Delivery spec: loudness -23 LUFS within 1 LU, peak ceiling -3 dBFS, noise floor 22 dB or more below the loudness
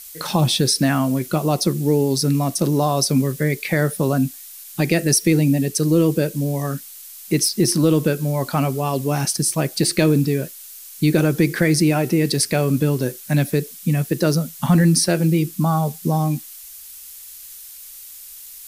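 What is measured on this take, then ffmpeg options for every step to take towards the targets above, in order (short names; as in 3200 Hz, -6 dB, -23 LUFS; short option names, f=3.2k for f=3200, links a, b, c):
noise floor -39 dBFS; noise floor target -41 dBFS; loudness -19.0 LUFS; peak -4.5 dBFS; loudness target -23.0 LUFS
-> -af "afftdn=nr=6:nf=-39"
-af "volume=-4dB"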